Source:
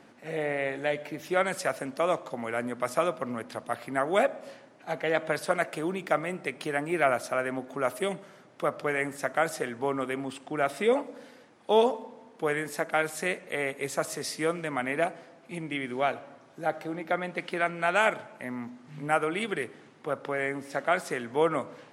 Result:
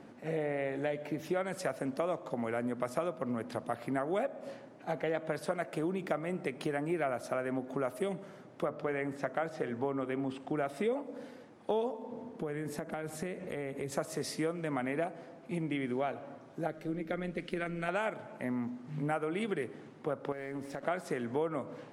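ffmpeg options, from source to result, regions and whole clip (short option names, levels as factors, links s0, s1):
-filter_complex "[0:a]asettb=1/sr,asplit=3[s0][s1][s2];[s0]atrim=end=8.654[s3];[s1]atrim=start=8.65:end=10.48,asetpts=PTS-STARTPTS,afade=t=in:d=0.004:c=qsin,afade=t=out:st=1.826:d=0.004:c=qsin,acrossover=split=5600[s4][s5];[s5]acompressor=threshold=0.00282:ratio=4:attack=1:release=60[s6];[s4][s6]amix=inputs=2:normalize=0,highshelf=f=7700:g=-8.5,bandreject=f=50:t=h:w=6,bandreject=f=100:t=h:w=6,bandreject=f=150:t=h:w=6,bandreject=f=200:t=h:w=6,bandreject=f=250:t=h:w=6,bandreject=f=300:t=h:w=6,bandreject=f=350:t=h:w=6,bandreject=f=400:t=h:w=6,bandreject=f=450:t=h:w=6,bandreject=f=500:t=h:w=6[s7];[s2]atrim=start=10.476[s8];[s3][s7]acrossfade=d=0.004:c1=hsin:c2=qsin[s9];[s9][s8]acrossfade=d=0.004:c1=qsin:c2=hsin,asettb=1/sr,asplit=3[s10][s11][s12];[s10]atrim=end=12.114[s13];[s11]atrim=start=12.11:end=13.92,asetpts=PTS-STARTPTS,afade=t=in:d=0.004:c=qsin,afade=t=out:st=1.806:d=0.004:c=qsin,lowshelf=f=360:g=8,acompressor=threshold=0.0141:ratio=4:attack=3.2:release=140:knee=1:detection=peak[s14];[s12]atrim=start=13.916[s15];[s13][s14]acrossfade=d=0.004:c1=hsin:c2=qsin[s16];[s16][s15]acrossfade=d=0.004:c1=qsin:c2=hsin,asettb=1/sr,asplit=3[s17][s18][s19];[s17]atrim=end=16.674[s20];[s18]atrim=start=16.67:end=17.89,asetpts=PTS-STARTPTS,afade=t=in:d=0.004:c=qsin,afade=t=out:st=1.216:d=0.004:c=qsin,equalizer=f=860:t=o:w=0.93:g=-14,tremolo=f=150:d=0.4[s21];[s19]atrim=start=17.886[s22];[s20][s21]acrossfade=d=0.004:c1=hsin:c2=qsin[s23];[s23][s22]acrossfade=d=0.004:c1=qsin:c2=hsin,asettb=1/sr,asplit=3[s24][s25][s26];[s24]atrim=end=20.324[s27];[s25]atrim=start=20.32:end=20.83,asetpts=PTS-STARTPTS,afade=t=in:d=0.004:c=qsin,afade=t=out:st=0.506:d=0.004:c=qsin,acompressor=threshold=0.0141:ratio=4:attack=3.2:release=140:knee=1:detection=peak,aeval=exprs='sgn(val(0))*max(abs(val(0))-0.00141,0)':c=same[s28];[s26]atrim=start=20.826[s29];[s27][s28]acrossfade=d=0.004:c1=hsin:c2=qsin[s30];[s30][s29]acrossfade=d=0.004:c1=qsin:c2=hsin,tiltshelf=f=830:g=5,acompressor=threshold=0.0282:ratio=4"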